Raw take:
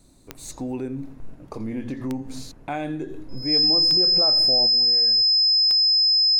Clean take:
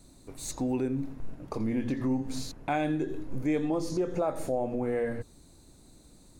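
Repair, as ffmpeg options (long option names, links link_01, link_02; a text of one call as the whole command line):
ffmpeg -i in.wav -af "adeclick=threshold=4,bandreject=frequency=5100:width=30,asetnsamples=nb_out_samples=441:pad=0,asendcmd='4.67 volume volume 10.5dB',volume=0dB" out.wav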